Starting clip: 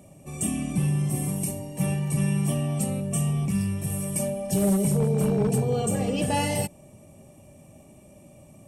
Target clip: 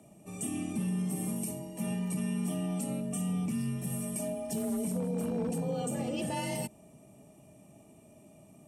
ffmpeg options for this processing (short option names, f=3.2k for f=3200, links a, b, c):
-af "afreqshift=35,alimiter=limit=-19dB:level=0:latency=1:release=70,volume=-6dB"